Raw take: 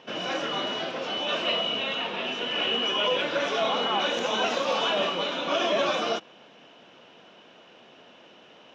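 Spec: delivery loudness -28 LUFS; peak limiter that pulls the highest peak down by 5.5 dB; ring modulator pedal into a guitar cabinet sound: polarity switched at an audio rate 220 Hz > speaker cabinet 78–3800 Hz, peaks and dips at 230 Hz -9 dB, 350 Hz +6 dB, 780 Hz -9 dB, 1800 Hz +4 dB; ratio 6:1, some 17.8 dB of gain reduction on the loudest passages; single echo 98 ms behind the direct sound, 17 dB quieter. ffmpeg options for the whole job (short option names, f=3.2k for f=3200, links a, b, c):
-af "acompressor=threshold=-42dB:ratio=6,alimiter=level_in=13dB:limit=-24dB:level=0:latency=1,volume=-13dB,aecho=1:1:98:0.141,aeval=exprs='val(0)*sgn(sin(2*PI*220*n/s))':c=same,highpass=78,equalizer=f=230:t=q:w=4:g=-9,equalizer=f=350:t=q:w=4:g=6,equalizer=f=780:t=q:w=4:g=-9,equalizer=f=1.8k:t=q:w=4:g=4,lowpass=f=3.8k:w=0.5412,lowpass=f=3.8k:w=1.3066,volume=18dB"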